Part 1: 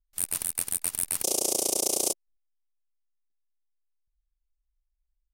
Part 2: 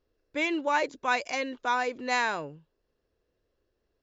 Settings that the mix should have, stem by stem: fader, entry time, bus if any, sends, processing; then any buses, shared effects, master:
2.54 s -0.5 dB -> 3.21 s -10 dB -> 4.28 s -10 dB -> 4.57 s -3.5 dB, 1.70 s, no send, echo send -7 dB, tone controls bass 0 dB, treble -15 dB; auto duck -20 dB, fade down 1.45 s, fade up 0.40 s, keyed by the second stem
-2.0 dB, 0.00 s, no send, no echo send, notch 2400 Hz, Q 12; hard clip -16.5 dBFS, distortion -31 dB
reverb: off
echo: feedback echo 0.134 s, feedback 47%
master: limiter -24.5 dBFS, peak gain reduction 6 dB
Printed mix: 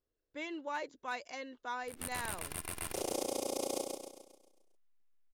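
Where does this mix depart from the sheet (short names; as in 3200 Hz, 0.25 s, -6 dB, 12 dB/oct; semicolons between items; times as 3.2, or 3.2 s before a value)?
stem 1 -0.5 dB -> +8.0 dB; stem 2 -2.0 dB -> -12.5 dB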